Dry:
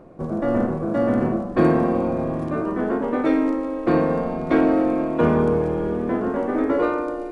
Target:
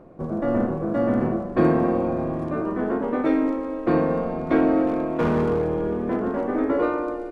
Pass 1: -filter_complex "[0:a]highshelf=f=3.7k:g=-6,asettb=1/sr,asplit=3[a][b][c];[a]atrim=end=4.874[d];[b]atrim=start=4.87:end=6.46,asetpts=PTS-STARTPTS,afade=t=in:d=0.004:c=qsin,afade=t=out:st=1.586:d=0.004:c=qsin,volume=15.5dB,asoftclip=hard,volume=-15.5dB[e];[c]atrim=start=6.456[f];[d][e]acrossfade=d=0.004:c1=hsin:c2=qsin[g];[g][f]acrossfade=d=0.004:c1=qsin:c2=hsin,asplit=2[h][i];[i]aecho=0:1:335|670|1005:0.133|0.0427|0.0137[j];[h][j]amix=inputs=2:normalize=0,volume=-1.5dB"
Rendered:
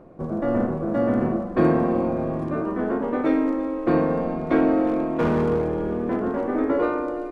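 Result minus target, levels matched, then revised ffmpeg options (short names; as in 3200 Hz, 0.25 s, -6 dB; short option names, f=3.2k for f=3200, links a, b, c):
echo 96 ms late
-filter_complex "[0:a]highshelf=f=3.7k:g=-6,asettb=1/sr,asplit=3[a][b][c];[a]atrim=end=4.874[d];[b]atrim=start=4.87:end=6.46,asetpts=PTS-STARTPTS,afade=t=in:d=0.004:c=qsin,afade=t=out:st=1.586:d=0.004:c=qsin,volume=15.5dB,asoftclip=hard,volume=-15.5dB[e];[c]atrim=start=6.456[f];[d][e]acrossfade=d=0.004:c1=hsin:c2=qsin[g];[g][f]acrossfade=d=0.004:c1=qsin:c2=hsin,asplit=2[h][i];[i]aecho=0:1:239|478|717:0.133|0.0427|0.0137[j];[h][j]amix=inputs=2:normalize=0,volume=-1.5dB"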